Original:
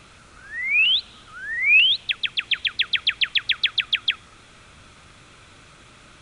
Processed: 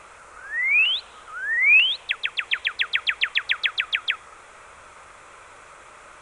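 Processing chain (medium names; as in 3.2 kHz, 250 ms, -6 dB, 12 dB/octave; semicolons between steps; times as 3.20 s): graphic EQ 125/250/500/1000/2000/4000/8000 Hz -7/-6/+10/+12/+7/-6/+9 dB; trim -5 dB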